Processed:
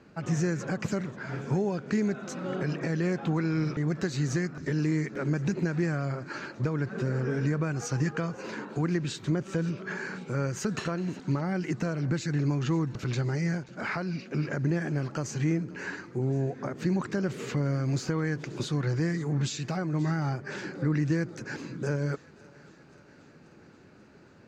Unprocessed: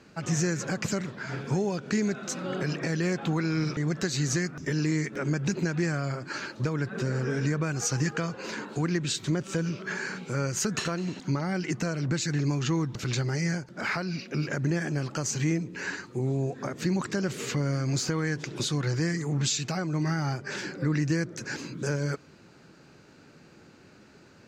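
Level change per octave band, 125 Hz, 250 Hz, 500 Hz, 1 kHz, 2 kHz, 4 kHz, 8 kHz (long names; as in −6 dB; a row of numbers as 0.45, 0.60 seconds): 0.0, 0.0, −0.5, −1.5, −3.0, −7.5, −9.5 decibels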